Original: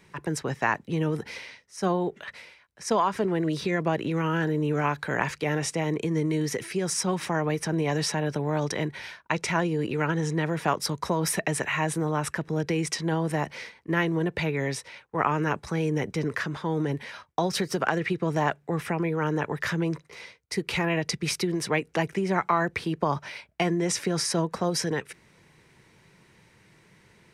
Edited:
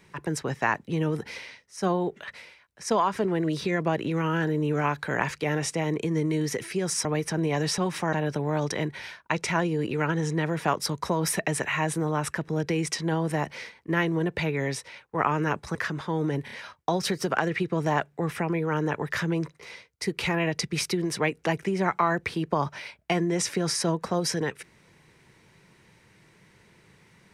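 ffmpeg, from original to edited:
-filter_complex "[0:a]asplit=7[a][b][c][d][e][f][g];[a]atrim=end=7.052[h];[b]atrim=start=7.398:end=8.132[i];[c]atrim=start=7.048:end=7.402[j];[d]atrim=start=8.128:end=15.752[k];[e]atrim=start=16.308:end=17.042[l];[f]atrim=start=17.008:end=17.042[m];[g]atrim=start=17.008[n];[h][i]acrossfade=d=0.004:c1=hsin:c2=hsin[o];[o][j]acrossfade=d=0.004:c1=hsin:c2=hsin[p];[p][k]acrossfade=d=0.004:c1=hsin:c2=hsin[q];[q][l]acrossfade=d=0.004:c1=hsin:c2=hsin[r];[r][m]acrossfade=d=0.004:c1=hsin:c2=hsin[s];[s][n]acrossfade=d=0.004:c1=hsin:c2=hsin"

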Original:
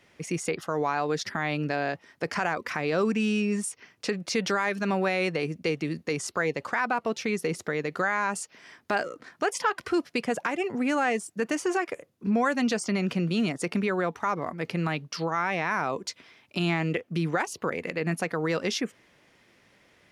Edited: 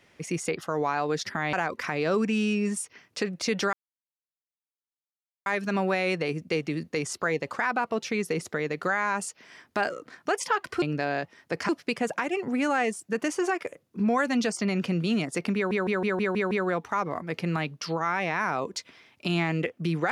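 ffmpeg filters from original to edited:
-filter_complex "[0:a]asplit=11[a][b][c][d][e][f][g][h][i][j][k];[a]atrim=end=1.532[l];[b]atrim=start=2.398:end=4.6,asetpts=PTS-STARTPTS,afade=t=out:st=2.198:d=0.004:c=hsin,apad=pad_dur=1.73[m];[c]atrim=start=4.6:end=9.962,asetpts=PTS-STARTPTS,afade=t=in:d=0.004:c=hsin[n];[d]atrim=start=1.528:end=2.402[o];[e]atrim=start=9.958:end=13.982[p];[f]atrim=start=13.818:end=13.982[q];[g]atrim=start=13.818:end=13.982[r];[h]atrim=start=13.818:end=13.982[s];[i]atrim=start=13.818:end=13.982[t];[j]atrim=start=13.818:end=13.982[u];[k]atrim=start=13.818[v];[m][n]concat=n=2:v=0:a=1[w];[l][w]acrossfade=d=0.004:c1=hsin:c2=hsin[x];[x][o]acrossfade=d=0.004:c1=hsin:c2=hsin[y];[y][p]acrossfade=d=0.004:c1=hsin:c2=hsin[z];[z][q]acrossfade=d=0.004:c1=hsin:c2=hsin[aa];[aa][r]acrossfade=d=0.004:c1=hsin:c2=hsin[ab];[ab][s]acrossfade=d=0.004:c1=hsin:c2=hsin[ac];[ac][t]acrossfade=d=0.004:c1=hsin:c2=hsin[ad];[ad][u]acrossfade=d=0.004:c1=hsin:c2=hsin[ae];[ae][v]acrossfade=d=0.004:c1=hsin:c2=hsin"

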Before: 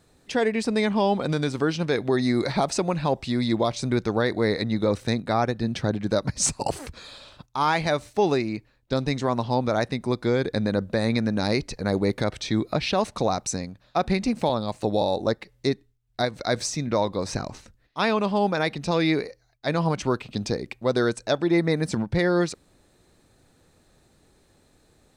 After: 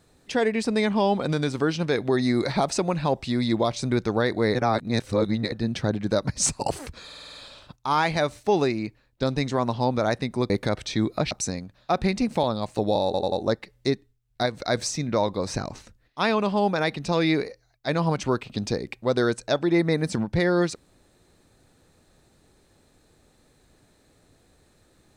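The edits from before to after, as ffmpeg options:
-filter_complex "[0:a]asplit=14[a][b][c][d][e][f][g][h][i][j][k][l][m][n];[a]atrim=end=4.552[o];[b]atrim=start=4.548:end=5.522,asetpts=PTS-STARTPTS,areverse[p];[c]atrim=start=5.518:end=7.102[q];[d]atrim=start=7.048:end=7.102[r];[e]atrim=start=7.048:end=7.102[s];[f]atrim=start=7.048:end=7.102[t];[g]atrim=start=7.048:end=7.102[u];[h]atrim=start=7.048:end=7.102[v];[i]atrim=start=7.048:end=10.202[w];[j]atrim=start=12.048:end=12.862[x];[k]atrim=start=13.368:end=15.202[y];[l]atrim=start=15.108:end=15.202[z];[m]atrim=start=15.108:end=15.202[aa];[n]atrim=start=15.108[ab];[o][p]acrossfade=d=0.004:c1=hsin:c2=hsin[ac];[ac][q]acrossfade=d=0.004:c1=hsin:c2=hsin[ad];[ad][r]acrossfade=d=0.004:c1=hsin:c2=hsin[ae];[ae][s]acrossfade=d=0.004:c1=hsin:c2=hsin[af];[af][t]acrossfade=d=0.004:c1=hsin:c2=hsin[ag];[ag][u]acrossfade=d=0.004:c1=hsin:c2=hsin[ah];[ah][v]acrossfade=d=0.004:c1=hsin:c2=hsin[ai];[ai][w]acrossfade=d=0.004:c1=hsin:c2=hsin[aj];[aj][x]acrossfade=d=0.004:c1=hsin:c2=hsin[ak];[ak][y]acrossfade=d=0.004:c1=hsin:c2=hsin[al];[al][z]acrossfade=d=0.004:c1=hsin:c2=hsin[am];[am][aa]acrossfade=d=0.004:c1=hsin:c2=hsin[an];[an][ab]acrossfade=d=0.004:c1=hsin:c2=hsin"

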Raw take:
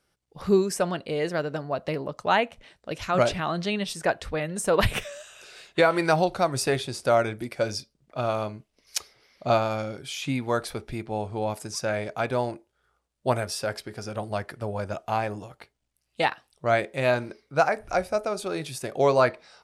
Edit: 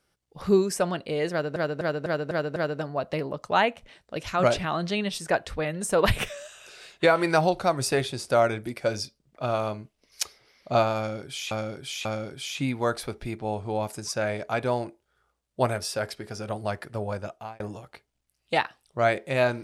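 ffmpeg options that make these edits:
-filter_complex "[0:a]asplit=9[a][b][c][d][e][f][g][h][i];[a]atrim=end=1.562[j];[b]atrim=start=1.308:end=1.562[k];[c]atrim=start=1.308:end=1.562[l];[d]atrim=start=1.308:end=1.562[m];[e]atrim=start=1.308:end=1.562[n];[f]atrim=start=1.308:end=10.262[o];[g]atrim=start=9.718:end=10.262[p];[h]atrim=start=9.718:end=15.27,asetpts=PTS-STARTPTS,afade=t=out:st=5.052:d=0.5[q];[i]atrim=start=15.27,asetpts=PTS-STARTPTS,afade=t=in:d=0.004:c=hsin[r];[j][k]acrossfade=d=0.004:c1=hsin:c2=hsin[s];[s][l]acrossfade=d=0.004:c1=hsin:c2=hsin[t];[t][m]acrossfade=d=0.004:c1=hsin:c2=hsin[u];[u][n]acrossfade=d=0.004:c1=hsin:c2=hsin[v];[v][o]acrossfade=d=0.004:c1=hsin:c2=hsin[w];[w][p]acrossfade=d=0.004:c1=hsin:c2=hsin[x];[q][r]concat=n=2:v=0:a=1[y];[x][y]acrossfade=d=0.004:c1=hsin:c2=hsin"

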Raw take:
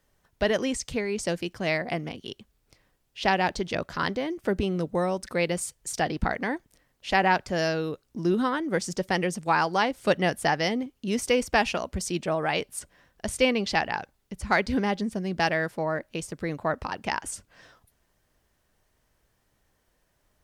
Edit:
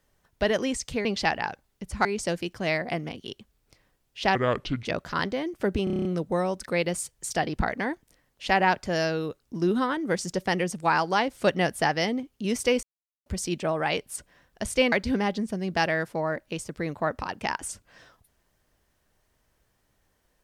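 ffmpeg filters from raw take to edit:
-filter_complex "[0:a]asplit=15[a][b][c][d][e][f][g][h][i][j][k][l][m][n][o];[a]atrim=end=1.052[p];[b]atrim=start=13.548:end=14.552[q];[c]atrim=start=1.048:end=3.354[r];[d]atrim=start=3.35:end=3.69,asetpts=PTS-STARTPTS,asetrate=29988,aresample=44100[s];[e]atrim=start=3.686:end=4.712[t];[f]atrim=start=4.678:end=4.712[u];[g]atrim=start=4.678:end=4.712[v];[h]atrim=start=4.678:end=4.712[w];[i]atrim=start=4.678:end=4.712[x];[j]atrim=start=4.678:end=4.712[y];[k]atrim=start=4.678:end=4.712[z];[l]atrim=start=4.678:end=11.46,asetpts=PTS-STARTPTS,afade=t=out:st=6.778:d=0.004:c=hsin[aa];[m]atrim=start=11.46:end=11.89,asetpts=PTS-STARTPTS,volume=0[ab];[n]atrim=start=11.89:end=13.552,asetpts=PTS-STARTPTS,afade=t=in:d=0.004:c=hsin[ac];[o]atrim=start=14.548[ad];[p][q]acrossfade=d=0.004:c1=hsin:c2=hsin[ae];[ae][r]acrossfade=d=0.004:c1=hsin:c2=hsin[af];[af][s]acrossfade=d=0.004:c1=hsin:c2=hsin[ag];[ag][t]acrossfade=d=0.004:c1=hsin:c2=hsin[ah];[ah][u]acrossfade=d=0.004:c1=hsin:c2=hsin[ai];[ai][v]acrossfade=d=0.004:c1=hsin:c2=hsin[aj];[aj][w]acrossfade=d=0.004:c1=hsin:c2=hsin[ak];[ak][x]acrossfade=d=0.004:c1=hsin:c2=hsin[al];[al][y]acrossfade=d=0.004:c1=hsin:c2=hsin[am];[am][z]acrossfade=d=0.004:c1=hsin:c2=hsin[an];[aa][ab][ac]concat=n=3:v=0:a=1[ao];[an][ao]acrossfade=d=0.004:c1=hsin:c2=hsin[ap];[ap][ad]acrossfade=d=0.004:c1=hsin:c2=hsin"

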